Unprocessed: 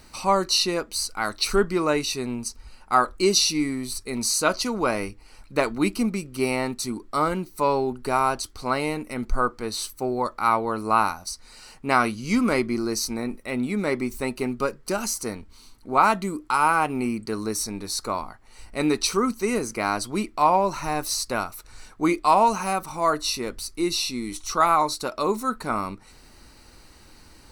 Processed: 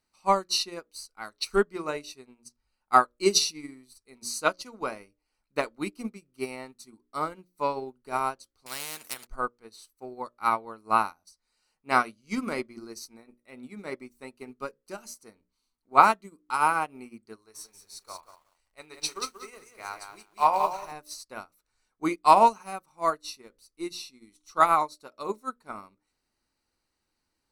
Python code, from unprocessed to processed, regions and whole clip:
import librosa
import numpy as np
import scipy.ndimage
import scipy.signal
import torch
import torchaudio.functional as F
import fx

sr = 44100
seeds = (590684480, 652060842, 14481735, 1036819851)

y = fx.chain(x, sr, fx.highpass(hz=130.0, slope=12),
    fx.high_shelf(hz=2400.0, db=10.0),
    fx.spectral_comp(ratio=4.0), at=(8.66, 9.27))
y = fx.chain(y, sr, fx.peak_eq(hz=230.0, db=-14.5, octaves=1.3),
    fx.doubler(ms=32.0, db=-12.0),
    fx.echo_crushed(ms=183, feedback_pct=35, bits=7, wet_db=-3), at=(17.36, 20.92))
y = fx.low_shelf(y, sr, hz=110.0, db=-8.0)
y = fx.hum_notches(y, sr, base_hz=60, count=10)
y = fx.upward_expand(y, sr, threshold_db=-35.0, expansion=2.5)
y = y * librosa.db_to_amplitude(3.5)